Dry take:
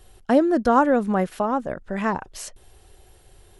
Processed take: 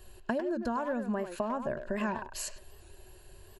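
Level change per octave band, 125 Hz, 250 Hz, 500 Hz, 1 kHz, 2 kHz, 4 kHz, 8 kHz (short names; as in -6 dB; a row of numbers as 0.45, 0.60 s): -10.5, -12.0, -11.5, -13.5, -9.0, -5.0, -2.5 dB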